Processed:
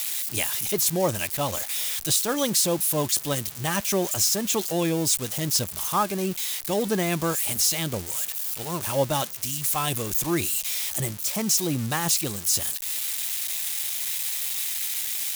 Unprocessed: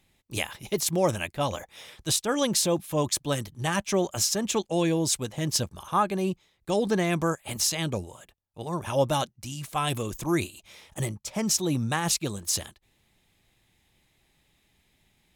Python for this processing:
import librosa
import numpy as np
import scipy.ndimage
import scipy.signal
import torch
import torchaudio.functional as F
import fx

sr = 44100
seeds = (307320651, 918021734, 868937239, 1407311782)

y = x + 0.5 * 10.0 ** (-20.5 / 20.0) * np.diff(np.sign(x), prepend=np.sign(x[:1]))